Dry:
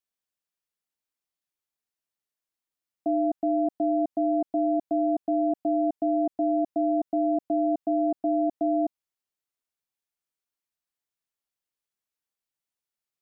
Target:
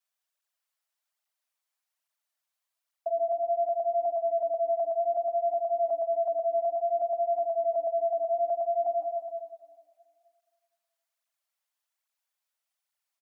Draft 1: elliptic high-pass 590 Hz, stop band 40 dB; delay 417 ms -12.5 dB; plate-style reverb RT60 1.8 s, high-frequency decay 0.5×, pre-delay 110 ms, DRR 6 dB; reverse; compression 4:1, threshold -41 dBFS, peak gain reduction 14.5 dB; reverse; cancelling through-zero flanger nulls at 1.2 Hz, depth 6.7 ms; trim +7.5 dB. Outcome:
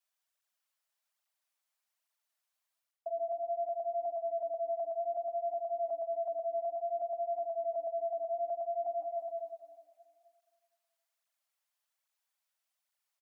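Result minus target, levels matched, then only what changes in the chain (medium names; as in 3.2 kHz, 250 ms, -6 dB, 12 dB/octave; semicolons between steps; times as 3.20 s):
compression: peak gain reduction +7.5 dB
change: compression 4:1, threshold -31 dBFS, peak gain reduction 7 dB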